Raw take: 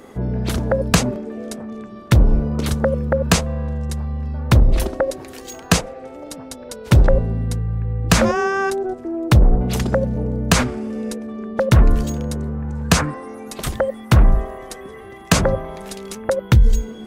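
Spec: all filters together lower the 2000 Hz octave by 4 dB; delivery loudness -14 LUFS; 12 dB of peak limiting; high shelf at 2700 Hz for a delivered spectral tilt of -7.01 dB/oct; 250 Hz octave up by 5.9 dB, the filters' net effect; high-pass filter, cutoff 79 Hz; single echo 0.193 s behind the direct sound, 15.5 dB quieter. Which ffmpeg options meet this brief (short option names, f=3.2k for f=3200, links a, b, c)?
-af "highpass=79,equalizer=f=250:t=o:g=8,equalizer=f=2k:t=o:g=-4,highshelf=f=2.7k:g=-4,alimiter=limit=-10dB:level=0:latency=1,aecho=1:1:193:0.168,volume=7.5dB"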